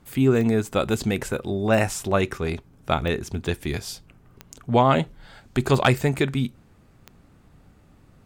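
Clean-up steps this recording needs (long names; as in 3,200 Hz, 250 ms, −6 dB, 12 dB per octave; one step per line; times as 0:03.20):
clipped peaks rebuilt −6 dBFS
click removal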